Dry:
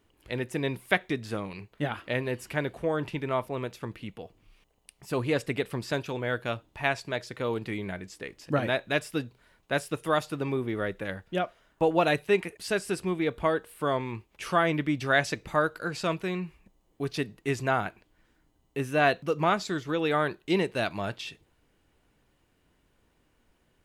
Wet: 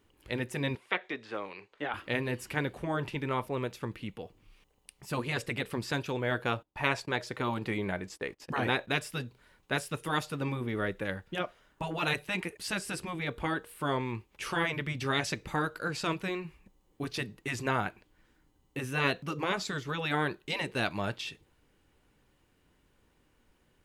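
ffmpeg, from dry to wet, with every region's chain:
ffmpeg -i in.wav -filter_complex "[0:a]asettb=1/sr,asplit=3[link_01][link_02][link_03];[link_01]atrim=end=0.754[link_04];[link_02]atrim=start=0.75:end=1.94,asetpts=PTS-STARTPTS,afade=type=in:duration=0.004:curve=qsin,afade=type=out:start_time=1.186:duration=0.004:curve=qsin,acrossover=split=3500[link_05][link_06];[link_06]acompressor=threshold=-59dB:ratio=4:attack=1:release=60[link_07];[link_05][link_07]amix=inputs=2:normalize=0,acrossover=split=330 7800:gain=0.0891 1 0.0891[link_08][link_09][link_10];[link_08][link_09][link_10]amix=inputs=3:normalize=0[link_11];[link_03]atrim=start=1.936[link_12];[link_04][link_11]acrossfade=duration=0.004:curve1=hsin:curve2=qsin[link_13];[link_13][link_12]acrossfade=duration=0.004:curve1=qsin:curve2=hsin,asettb=1/sr,asplit=3[link_14][link_15][link_16];[link_14]atrim=end=6.314[link_17];[link_15]atrim=start=6.31:end=8.92,asetpts=PTS-STARTPTS,afade=type=in:duration=0.004:curve=qsin,afade=type=out:start_time=2.606:duration=0.004:curve=qsin,agate=range=-21dB:threshold=-51dB:ratio=16:release=100:detection=peak,equalizer=frequency=760:width_type=o:width=2:gain=5.5[link_18];[link_16]atrim=start=8.916[link_19];[link_17][link_18]acrossfade=duration=0.004:curve1=hsin:curve2=qsin[link_20];[link_20][link_19]acrossfade=duration=0.004:curve1=qsin:curve2=hsin,bandreject=frequency=670:width=12,afftfilt=real='re*lt(hypot(re,im),0.251)':imag='im*lt(hypot(re,im),0.251)':win_size=1024:overlap=0.75" out.wav

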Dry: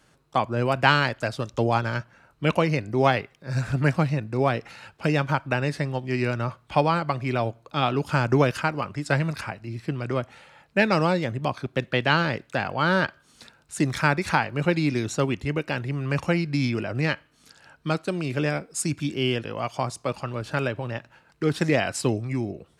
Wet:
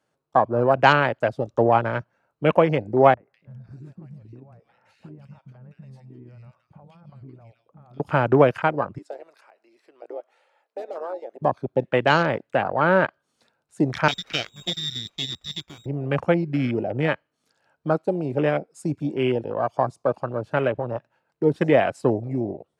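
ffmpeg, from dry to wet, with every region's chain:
ffmpeg -i in.wav -filter_complex "[0:a]asettb=1/sr,asplit=3[link_01][link_02][link_03];[link_01]atrim=end=3.144[link_04];[link_02]atrim=start=3.14:end=8,asetpts=PTS-STARTPTS,afade=type=in:duration=0.004:curve=qsin,afade=type=out:start_time=4.856:duration=0.004:curve=qsin,acompressor=threshold=-38dB:ratio=6:attack=3.2:release=140:knee=1:detection=peak,acrossover=split=400|1700[link_05][link_06][link_07];[link_06]adelay=30[link_08];[link_07]adelay=200[link_09];[link_05][link_08][link_09]amix=inputs=3:normalize=0,atrim=end_sample=214326[link_10];[link_03]atrim=start=7.996[link_11];[link_04][link_10]acrossfade=duration=0.004:curve1=hsin:curve2=qsin[link_12];[link_12][link_11]acrossfade=duration=0.004:curve1=qsin:curve2=hsin,asettb=1/sr,asplit=3[link_13][link_14][link_15];[link_13]atrim=end=8.984[link_16];[link_14]atrim=start=8.98:end=11.42,asetpts=PTS-STARTPTS,afade=type=in:duration=0.004:curve=qsin,afade=type=out:start_time=2.436:duration=0.004:curve=qsin,highpass=frequency=370:width=0.5412,highpass=frequency=370:width=1.3066,aeval=exprs='0.15*(abs(mod(val(0)/0.15+3,4)-2)-1)':channel_layout=same,acompressor=threshold=-42dB:ratio=2:attack=3.2:release=140:knee=1:detection=peak[link_17];[link_15]atrim=start=11.416[link_18];[link_16][link_17]acrossfade=duration=0.004:curve1=hsin:curve2=qsin[link_19];[link_19][link_18]acrossfade=duration=0.004:curve1=qsin:curve2=hsin,asettb=1/sr,asplit=3[link_20][link_21][link_22];[link_20]atrim=end=14.084[link_23];[link_21]atrim=start=14.08:end=15.86,asetpts=PTS-STARTPTS,afade=type=in:duration=0.004:curve=qsin,afade=type=out:start_time=1.776:duration=0.004:curve=qsin,lowpass=frequency=3300:width_type=q:width=0.5098,lowpass=frequency=3300:width_type=q:width=0.6013,lowpass=frequency=3300:width_type=q:width=0.9,lowpass=frequency=3300:width_type=q:width=2.563,afreqshift=-3900,aeval=exprs='max(val(0),0)':channel_layout=same[link_24];[link_22]atrim=start=15.856[link_25];[link_23][link_24]acrossfade=duration=0.004:curve1=hsin:curve2=qsin[link_26];[link_26][link_25]acrossfade=duration=0.004:curve1=qsin:curve2=hsin,afwtdn=0.0316,highpass=83,equalizer=frequency=600:width=0.78:gain=8.5,volume=-1dB" out.wav

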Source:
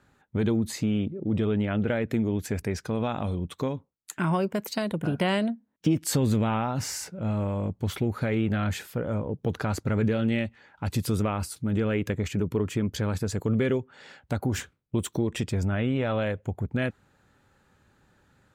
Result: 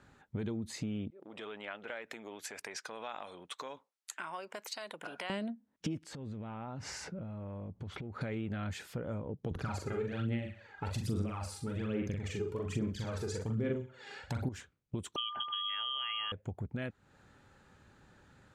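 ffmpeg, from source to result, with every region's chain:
ffmpeg -i in.wav -filter_complex "[0:a]asettb=1/sr,asplit=3[link_01][link_02][link_03];[link_01]atrim=end=1.104[link_04];[link_02]atrim=start=1.1:end=5.3,asetpts=PTS-STARTPTS,afade=type=in:duration=0.004:curve=qsin,afade=type=out:start_time=4.196:duration=0.004:curve=qsin,acompressor=threshold=-27dB:ratio=6:attack=3.2:release=140:knee=1:detection=peak,highpass=780[link_05];[link_03]atrim=start=5.296[link_06];[link_04][link_05]acrossfade=duration=0.004:curve1=hsin:curve2=qsin[link_07];[link_07][link_06]acrossfade=duration=0.004:curve1=qsin:curve2=hsin,asettb=1/sr,asplit=3[link_08][link_09][link_10];[link_08]atrim=end=6.034[link_11];[link_09]atrim=start=6.03:end=8.21,asetpts=PTS-STARTPTS,afade=type=in:duration=0.004:curve=qsin,afade=type=out:start_time=2.176:duration=0.004:curve=qsin,aemphasis=mode=reproduction:type=75fm,acompressor=threshold=-37dB:ratio=16:attack=3.2:release=140:knee=1:detection=peak[link_12];[link_10]atrim=start=8.206[link_13];[link_11][link_12]acrossfade=duration=0.004:curve1=hsin:curve2=qsin[link_14];[link_14][link_13]acrossfade=duration=0.004:curve1=qsin:curve2=hsin,asettb=1/sr,asplit=3[link_15][link_16][link_17];[link_15]atrim=end=9.514[link_18];[link_16]atrim=start=9.51:end=14.49,asetpts=PTS-STARTPTS,afade=type=in:duration=0.004:curve=qsin,afade=type=out:start_time=4.976:duration=0.004:curve=qsin,aecho=1:1:63|126|189|252:0.251|0.0929|0.0344|0.0127,atrim=end_sample=219618,aphaser=in_gain=1:out_gain=1:delay=2.5:decay=0.69:speed=1.2:type=sinusoidal,asplit=2[link_19][link_20];[link_20]adelay=42,volume=-3.5dB[link_21];[link_19][link_21]amix=inputs=2:normalize=0,atrim=end_sample=219618[link_22];[link_17]atrim=start=14.486[link_23];[link_18][link_22]acrossfade=duration=0.004:curve1=hsin:curve2=qsin[link_24];[link_24][link_23]acrossfade=duration=0.004:curve1=qsin:curve2=hsin,asettb=1/sr,asplit=3[link_25][link_26][link_27];[link_25]atrim=end=15.164[link_28];[link_26]atrim=start=15.16:end=16.32,asetpts=PTS-STARTPTS,afade=type=in:duration=0.004:curve=qsin,afade=type=out:start_time=1.156:duration=0.004:curve=qsin,aeval=exprs='val(0)+0.0398*sin(2*PI*2200*n/s)':channel_layout=same,lowpass=frequency=2900:width_type=q:width=0.5098,lowpass=frequency=2900:width_type=q:width=0.6013,lowpass=frequency=2900:width_type=q:width=0.9,lowpass=frequency=2900:width_type=q:width=2.563,afreqshift=-3400[link_29];[link_27]atrim=start=16.316[link_30];[link_28][link_29]acrossfade=duration=0.004:curve1=hsin:curve2=qsin[link_31];[link_31][link_30]acrossfade=duration=0.004:curve1=qsin:curve2=hsin,acompressor=threshold=-41dB:ratio=3,lowpass=8900,volume=1.5dB" out.wav

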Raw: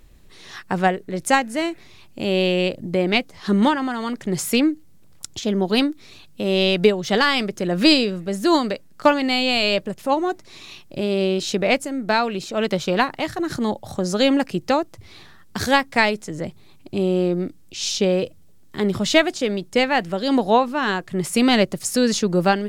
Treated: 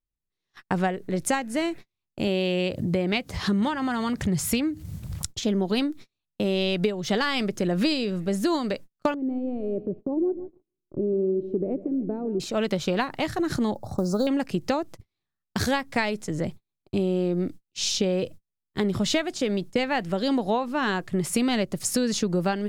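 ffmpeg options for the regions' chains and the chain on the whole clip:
ffmpeg -i in.wav -filter_complex "[0:a]asettb=1/sr,asplit=3[link_01][link_02][link_03];[link_01]atrim=end=2.274[link_04];[link_02]atrim=start=2.27:end=5.27,asetpts=PTS-STARTPTS,afade=type=in:duration=0.004:curve=qsin,afade=type=out:start_time=2.996:duration=0.004:curve=qsin,highpass=44,asubboost=boost=9.5:cutoff=120,acompressor=mode=upward:threshold=-21dB:ratio=2.5:attack=3.2:release=140:knee=2.83:detection=peak[link_05];[link_03]atrim=start=5.266[link_06];[link_04][link_05]acrossfade=duration=0.004:curve1=hsin:curve2=qsin[link_07];[link_07][link_06]acrossfade=duration=0.004:curve1=qsin:curve2=hsin,asettb=1/sr,asplit=3[link_08][link_09][link_10];[link_08]atrim=end=9.144[link_11];[link_09]atrim=start=9.14:end=12.4,asetpts=PTS-STARTPTS,afade=type=in:duration=0.004:curve=qsin,afade=type=out:start_time=3.256:duration=0.004:curve=qsin,acompressor=threshold=-40dB:ratio=1.5:attack=3.2:release=140:knee=1:detection=peak,lowpass=frequency=370:width_type=q:width=3.1,aecho=1:1:151|302|453|604:0.178|0.08|0.036|0.0162,atrim=end_sample=143766[link_12];[link_10]atrim=start=12.396[link_13];[link_11][link_12]acrossfade=duration=0.004:curve1=hsin:curve2=qsin[link_14];[link_14][link_13]acrossfade=duration=0.004:curve1=qsin:curve2=hsin,asettb=1/sr,asplit=3[link_15][link_16][link_17];[link_15]atrim=end=13.754[link_18];[link_16]atrim=start=13.75:end=14.27,asetpts=PTS-STARTPTS,afade=type=in:duration=0.004:curve=qsin,afade=type=out:start_time=0.516:duration=0.004:curve=qsin,highshelf=frequency=4900:gain=-9.5,acrusher=bits=7:mode=log:mix=0:aa=0.000001,asuperstop=centerf=2400:order=8:qfactor=0.88[link_19];[link_17]atrim=start=14.266[link_20];[link_18][link_19]acrossfade=duration=0.004:curve1=hsin:curve2=qsin[link_21];[link_21][link_20]acrossfade=duration=0.004:curve1=qsin:curve2=hsin,lowshelf=frequency=260:gain=4.5,agate=range=-42dB:threshold=-33dB:ratio=16:detection=peak,acompressor=threshold=-20dB:ratio=6,volume=-1dB" out.wav

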